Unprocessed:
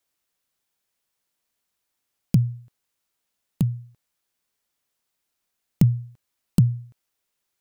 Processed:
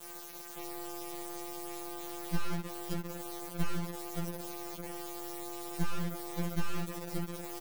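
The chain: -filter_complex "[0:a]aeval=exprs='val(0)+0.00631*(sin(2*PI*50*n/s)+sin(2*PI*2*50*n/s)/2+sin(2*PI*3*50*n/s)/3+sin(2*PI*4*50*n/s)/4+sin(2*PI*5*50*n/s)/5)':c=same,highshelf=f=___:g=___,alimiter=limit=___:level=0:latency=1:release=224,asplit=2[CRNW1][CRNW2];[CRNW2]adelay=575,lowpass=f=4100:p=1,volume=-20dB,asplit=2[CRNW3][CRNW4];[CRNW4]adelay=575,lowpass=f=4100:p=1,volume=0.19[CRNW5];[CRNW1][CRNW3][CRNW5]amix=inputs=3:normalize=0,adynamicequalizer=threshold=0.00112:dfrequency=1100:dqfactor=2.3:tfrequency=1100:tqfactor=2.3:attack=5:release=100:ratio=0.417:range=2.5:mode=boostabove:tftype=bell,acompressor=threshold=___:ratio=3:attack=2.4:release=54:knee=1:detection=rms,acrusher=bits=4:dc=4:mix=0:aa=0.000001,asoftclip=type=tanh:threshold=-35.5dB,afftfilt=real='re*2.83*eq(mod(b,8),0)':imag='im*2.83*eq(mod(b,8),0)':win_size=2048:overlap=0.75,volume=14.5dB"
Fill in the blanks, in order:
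8900, 9.5, -8.5dB, -43dB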